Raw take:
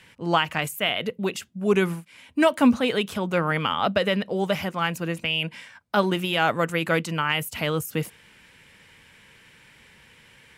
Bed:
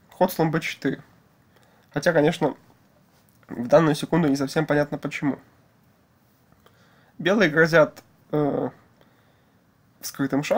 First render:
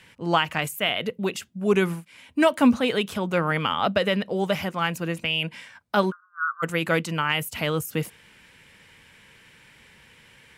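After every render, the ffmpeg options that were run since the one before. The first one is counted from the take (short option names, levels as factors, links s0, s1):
-filter_complex "[0:a]asplit=3[s0][s1][s2];[s0]afade=t=out:st=6.1:d=0.02[s3];[s1]asuperpass=centerf=1300:order=12:qfactor=2.9,afade=t=in:st=6.1:d=0.02,afade=t=out:st=6.62:d=0.02[s4];[s2]afade=t=in:st=6.62:d=0.02[s5];[s3][s4][s5]amix=inputs=3:normalize=0"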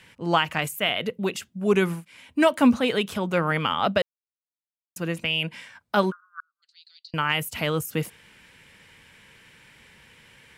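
-filter_complex "[0:a]asettb=1/sr,asplit=3[s0][s1][s2];[s0]atrim=end=6.404[s3];[s1]atrim=start=6.4:end=7.14,asetpts=PTS-STARTPTS,afade=t=in:d=0.004:c=qsin,afade=t=out:st=0.736:d=0.004:c=qsin,asuperpass=centerf=4400:order=4:qfactor=5.7[s4];[s2]atrim=start=7.136[s5];[s3][s4]acrossfade=d=0.004:c1=hsin:c2=qsin[s6];[s6][s5]acrossfade=d=0.004:c1=qsin:c2=hsin,asplit=3[s7][s8][s9];[s7]atrim=end=4.02,asetpts=PTS-STARTPTS,afade=t=out:st=4.016:d=0.004:c=hsin[s10];[s8]atrim=start=4.02:end=4.96,asetpts=PTS-STARTPTS,volume=0[s11];[s9]atrim=start=4.96,asetpts=PTS-STARTPTS,afade=t=in:d=0.004:c=hsin[s12];[s10][s11][s12]concat=n=3:v=0:a=1"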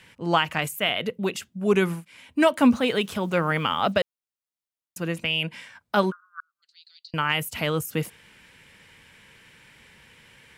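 -filter_complex "[0:a]asettb=1/sr,asplit=3[s0][s1][s2];[s0]atrim=end=2.744[s3];[s1]atrim=start=2.74:end=4,asetpts=PTS-STARTPTS,afade=t=in:d=0.004:c=qsin,afade=t=out:st=1.256:d=0.004:c=qsin,acrusher=bits=8:mix=0:aa=0.5[s4];[s2]atrim=start=3.996[s5];[s3][s4]acrossfade=d=0.004:c1=hsin:c2=qsin[s6];[s6][s5]acrossfade=d=0.004:c1=qsin:c2=hsin"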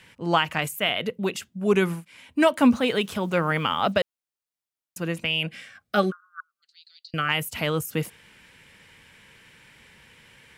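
-filter_complex "[0:a]asettb=1/sr,asplit=3[s0][s1][s2];[s0]atrim=end=5.464[s3];[s1]atrim=start=5.46:end=7.29,asetpts=PTS-STARTPTS,afade=t=in:d=0.004:c=qsin,afade=t=out:st=1.826:d=0.004:c=qsin,asuperstop=centerf=940:order=20:qfactor=4.1[s4];[s2]atrim=start=7.286[s5];[s3][s4]acrossfade=d=0.004:c1=hsin:c2=qsin[s6];[s6][s5]acrossfade=d=0.004:c1=qsin:c2=hsin"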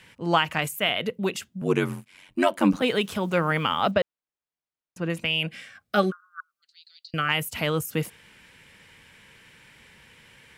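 -filter_complex "[0:a]asettb=1/sr,asplit=3[s0][s1][s2];[s0]atrim=end=1.614[s3];[s1]atrim=start=1.61:end=2.82,asetpts=PTS-STARTPTS,afade=t=in:d=0.004:c=qsin,afade=t=out:st=1.206:d=0.004:c=qsin,aeval=exprs='val(0)*sin(2*PI*46*n/s)':c=same[s4];[s2]atrim=start=2.816[s5];[s3][s4]acrossfade=d=0.004:c1=hsin:c2=qsin[s6];[s6][s5]acrossfade=d=0.004:c1=qsin:c2=hsin,asettb=1/sr,asplit=3[s7][s8][s9];[s7]atrim=end=3.914[s10];[s8]atrim=start=3.91:end=5.1,asetpts=PTS-STARTPTS,afade=t=in:d=0.004:c=qsin,afade=t=out:st=1.186:d=0.004:c=qsin,aemphasis=mode=reproduction:type=75fm[s11];[s9]atrim=start=5.096[s12];[s10][s11]acrossfade=d=0.004:c1=hsin:c2=qsin[s13];[s13][s12]acrossfade=d=0.004:c1=qsin:c2=hsin"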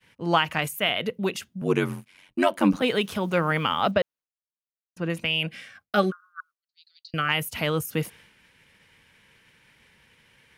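-af "bandreject=f=7600:w=8.8,agate=range=0.0224:threshold=0.00447:ratio=3:detection=peak"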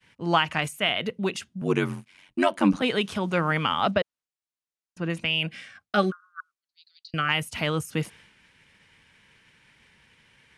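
-af "lowpass=f=9800:w=0.5412,lowpass=f=9800:w=1.3066,equalizer=f=500:w=3.2:g=-3.5"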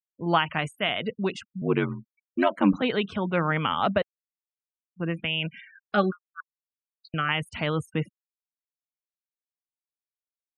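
-af "afftfilt=real='re*gte(hypot(re,im),0.0141)':imag='im*gte(hypot(re,im),0.0141)':win_size=1024:overlap=0.75,lowpass=f=2800:p=1"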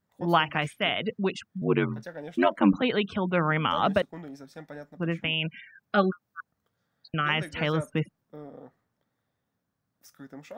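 -filter_complex "[1:a]volume=0.0891[s0];[0:a][s0]amix=inputs=2:normalize=0"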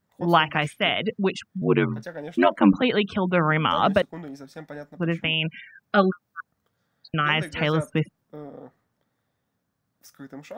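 -af "volume=1.58"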